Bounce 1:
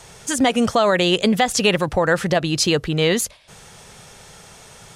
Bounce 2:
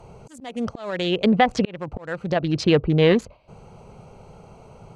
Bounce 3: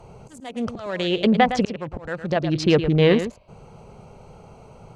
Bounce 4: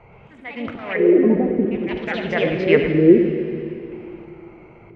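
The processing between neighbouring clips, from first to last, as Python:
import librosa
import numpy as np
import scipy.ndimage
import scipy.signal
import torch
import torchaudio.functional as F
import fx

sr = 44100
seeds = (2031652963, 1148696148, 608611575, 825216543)

y1 = fx.wiener(x, sr, points=25)
y1 = fx.auto_swell(y1, sr, attack_ms=754.0)
y1 = fx.env_lowpass_down(y1, sr, base_hz=2500.0, full_db=-20.0)
y1 = y1 * librosa.db_to_amplitude(3.0)
y2 = y1 + 10.0 ** (-10.5 / 20.0) * np.pad(y1, (int(110 * sr / 1000.0), 0))[:len(y1)]
y3 = fx.filter_lfo_lowpass(y2, sr, shape='square', hz=0.51, low_hz=350.0, high_hz=2100.0, q=7.7)
y3 = fx.rev_plate(y3, sr, seeds[0], rt60_s=3.0, hf_ratio=0.95, predelay_ms=0, drr_db=5.5)
y3 = fx.echo_pitch(y3, sr, ms=122, semitones=3, count=2, db_per_echo=-6.0)
y3 = y3 * librosa.db_to_amplitude(-4.0)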